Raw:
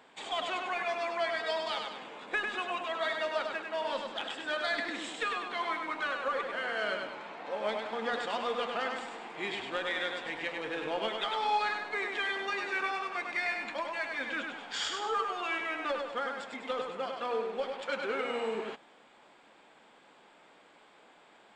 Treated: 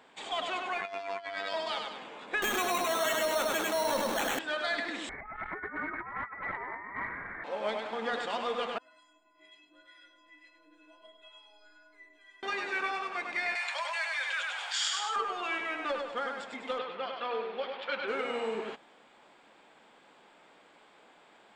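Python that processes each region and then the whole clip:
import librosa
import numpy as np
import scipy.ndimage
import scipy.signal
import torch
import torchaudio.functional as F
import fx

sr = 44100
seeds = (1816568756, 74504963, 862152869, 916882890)

y = fx.chain(x, sr, fx.lowpass(hz=8900.0, slope=12),
    fx.robotise(hz=98.0),
    fx.over_compress(threshold_db=-37.0, ratio=-0.5), at=(0.81, 1.54))
y = fx.chain(y, sr, fx.tilt_eq(slope=-1.5),
    fx.sample_hold(seeds[0], rate_hz=4900.0, jitter_pct=0),
    fx.env_flatten(amount_pct=70), at=(2.42, 4.39))
y = fx.chain(y, sr, fx.over_compress(threshold_db=-37.0, ratio=-0.5),
    fx.freq_invert(carrier_hz=2500),
    fx.transformer_sat(knee_hz=310.0), at=(5.09, 7.44))
y = fx.chain(y, sr, fx.stiff_resonator(f0_hz=300.0, decay_s=0.76, stiffness=0.03),
    fx.harmonic_tremolo(hz=2.1, depth_pct=50, crossover_hz=720.0), at=(8.78, 12.43))
y = fx.chain(y, sr, fx.bessel_highpass(hz=1000.0, order=8),
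    fx.high_shelf(hz=5400.0, db=10.0),
    fx.env_flatten(amount_pct=50), at=(13.55, 15.16))
y = fx.chain(y, sr, fx.lowpass(hz=4000.0, slope=24),
    fx.tilt_eq(slope=2.0), at=(16.78, 18.08))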